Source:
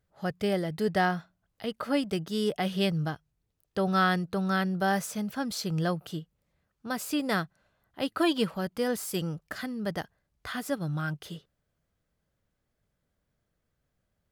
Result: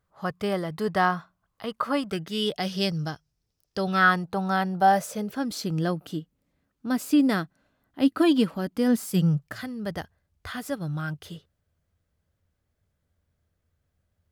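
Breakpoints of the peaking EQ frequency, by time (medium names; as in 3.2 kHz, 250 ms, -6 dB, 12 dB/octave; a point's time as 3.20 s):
peaking EQ +13 dB 0.52 oct
2.02 s 1.1 kHz
2.64 s 5.3 kHz
3.79 s 5.3 kHz
4.19 s 840 Hz
4.79 s 840 Hz
5.61 s 270 Hz
8.85 s 270 Hz
9.82 s 82 Hz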